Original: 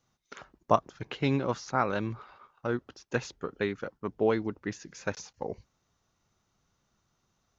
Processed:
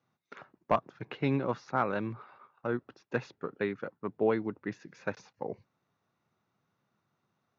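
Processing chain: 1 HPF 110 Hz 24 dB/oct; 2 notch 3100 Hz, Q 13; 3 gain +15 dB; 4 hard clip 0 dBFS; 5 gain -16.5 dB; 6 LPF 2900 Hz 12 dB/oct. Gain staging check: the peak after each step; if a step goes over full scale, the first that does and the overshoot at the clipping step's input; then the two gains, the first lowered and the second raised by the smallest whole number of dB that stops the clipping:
-8.0, -8.0, +7.0, 0.0, -16.5, -16.0 dBFS; step 3, 7.0 dB; step 3 +8 dB, step 5 -9.5 dB

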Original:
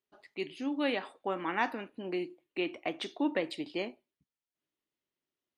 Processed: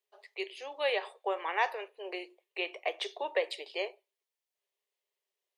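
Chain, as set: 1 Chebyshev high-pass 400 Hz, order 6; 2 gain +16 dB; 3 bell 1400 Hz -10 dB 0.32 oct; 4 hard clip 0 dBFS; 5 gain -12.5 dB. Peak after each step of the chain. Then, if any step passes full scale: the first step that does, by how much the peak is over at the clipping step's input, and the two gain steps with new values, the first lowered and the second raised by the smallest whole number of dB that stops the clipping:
-18.5, -2.5, -4.0, -4.0, -16.5 dBFS; no overload

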